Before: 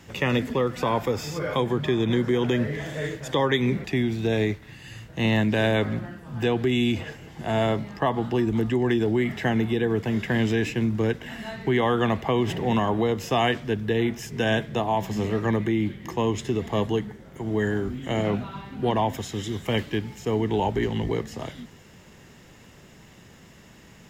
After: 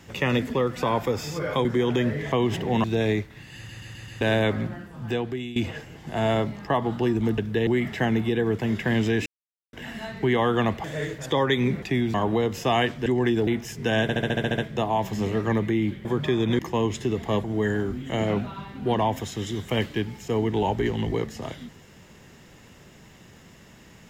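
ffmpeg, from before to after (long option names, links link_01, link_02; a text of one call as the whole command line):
ffmpeg -i in.wav -filter_complex "[0:a]asplit=29[link_01][link_02][link_03][link_04][link_05][link_06][link_07][link_08][link_09][link_10][link_11][link_12][link_13][link_14][link_15][link_16][link_17][link_18][link_19][link_20][link_21][link_22][link_23][link_24][link_25][link_26][link_27][link_28][link_29];[link_01]atrim=end=1.652[link_30];[link_02]atrim=start=2.188:end=2.862[link_31];[link_03]atrim=start=12.278:end=12.802[link_32];[link_04]atrim=start=4.158:end=5.012[link_33];[link_05]atrim=start=4.878:end=5.012[link_34];[link_06]atrim=start=4.878:end=5.012[link_35];[link_07]atrim=start=4.878:end=5.012[link_36];[link_08]atrim=start=4.878:end=5.012[link_37];[link_09]atrim=start=5.528:end=6.88,asetpts=PTS-STARTPTS,afade=type=out:start_time=0.702:duration=0.65:silence=0.141254[link_38];[link_10]atrim=start=6.88:end=8.702,asetpts=PTS-STARTPTS,afade=type=in:duration=0.004:curve=hsin:silence=0.141254[link_39];[link_11]atrim=start=13.718:end=14.012[link_40];[link_12]atrim=start=9.108:end=10.7,asetpts=PTS-STARTPTS,afade=type=out:start_time=1.588:duration=0.004:curve=hsin[link_41];[link_13]atrim=start=10.7:end=11.17,asetpts=PTS-STARTPTS,volume=0[link_42];[link_14]atrim=start=11.17:end=12.282,asetpts=PTS-STARTPTS,afade=type=in:duration=0.004:curve=hsin[link_43];[link_15]atrim=start=2.858:end=4.162[link_44];[link_16]atrim=start=12.798:end=13.722[link_45];[link_17]atrim=start=8.698:end=9.112[link_46];[link_18]atrim=start=14.008:end=14.632[link_47];[link_19]atrim=start=14.558:end=14.632[link_48];[link_20]atrim=start=14.558:end=14.632[link_49];[link_21]atrim=start=14.558:end=14.632[link_50];[link_22]atrim=start=14.558:end=14.632[link_51];[link_23]atrim=start=14.558:end=14.632[link_52];[link_24]atrim=start=14.558:end=14.632[link_53];[link_25]atrim=start=14.558:end=14.632[link_54];[link_26]atrim=start=14.558:end=16.032[link_55];[link_27]atrim=start=1.648:end=2.192[link_56];[link_28]atrim=start=16.028:end=16.882[link_57];[link_29]atrim=start=17.408[link_58];[link_30][link_31]acrossfade=duration=0.004:curve1=hsin:curve2=hsin[link_59];[link_59][link_32]acrossfade=duration=0.004:curve1=hsin:curve2=hsin[link_60];[link_60][link_33]acrossfade=duration=0.004:curve1=hsin:curve2=hsin[link_61];[link_61][link_34]acrossfade=duration=0.004:curve1=hsin:curve2=hsin[link_62];[link_62][link_35]acrossfade=duration=0.004:curve1=hsin:curve2=hsin[link_63];[link_63][link_36]acrossfade=duration=0.004:curve1=hsin:curve2=hsin[link_64];[link_64][link_37]acrossfade=duration=0.004:curve1=hsin:curve2=hsin[link_65];[link_38][link_39]concat=n=2:v=0:a=1[link_66];[link_65][link_66]acrossfade=duration=0.004:curve1=hsin:curve2=hsin[link_67];[link_67][link_40]acrossfade=duration=0.004:curve1=hsin:curve2=hsin[link_68];[link_41][link_42][link_43]concat=n=3:v=0:a=1[link_69];[link_68][link_69]acrossfade=duration=0.004:curve1=hsin:curve2=hsin[link_70];[link_70][link_44]acrossfade=duration=0.004:curve1=hsin:curve2=hsin[link_71];[link_71][link_45]acrossfade=duration=0.004:curve1=hsin:curve2=hsin[link_72];[link_72][link_46]acrossfade=duration=0.004:curve1=hsin:curve2=hsin[link_73];[link_73][link_47]acrossfade=duration=0.004:curve1=hsin:curve2=hsin[link_74];[link_74][link_48]acrossfade=duration=0.004:curve1=hsin:curve2=hsin[link_75];[link_75][link_49]acrossfade=duration=0.004:curve1=hsin:curve2=hsin[link_76];[link_76][link_50]acrossfade=duration=0.004:curve1=hsin:curve2=hsin[link_77];[link_77][link_51]acrossfade=duration=0.004:curve1=hsin:curve2=hsin[link_78];[link_78][link_52]acrossfade=duration=0.004:curve1=hsin:curve2=hsin[link_79];[link_79][link_53]acrossfade=duration=0.004:curve1=hsin:curve2=hsin[link_80];[link_80][link_54]acrossfade=duration=0.004:curve1=hsin:curve2=hsin[link_81];[link_81][link_55]acrossfade=duration=0.004:curve1=hsin:curve2=hsin[link_82];[link_82][link_56]acrossfade=duration=0.004:curve1=hsin:curve2=hsin[link_83];[link_83][link_57]acrossfade=duration=0.004:curve1=hsin:curve2=hsin[link_84];[link_84][link_58]acrossfade=duration=0.004:curve1=hsin:curve2=hsin" out.wav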